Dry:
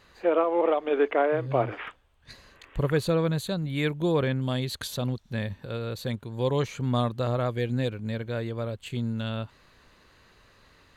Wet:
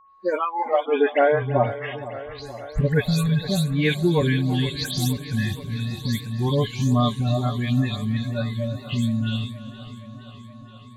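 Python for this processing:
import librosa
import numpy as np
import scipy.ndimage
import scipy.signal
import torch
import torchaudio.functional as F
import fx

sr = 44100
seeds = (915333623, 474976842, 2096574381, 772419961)

p1 = fx.spec_delay(x, sr, highs='late', ms=164)
p2 = fx.noise_reduce_blind(p1, sr, reduce_db=28)
p3 = p2 + 10.0 ** (-59.0 / 20.0) * np.sin(2.0 * np.pi * 1100.0 * np.arange(len(p2)) / sr)
p4 = p3 + fx.echo_feedback(p3, sr, ms=333, feedback_pct=30, wet_db=-18, dry=0)
p5 = fx.echo_warbled(p4, sr, ms=471, feedback_pct=70, rate_hz=2.8, cents=69, wet_db=-15)
y = F.gain(torch.from_numpy(p5), 7.5).numpy()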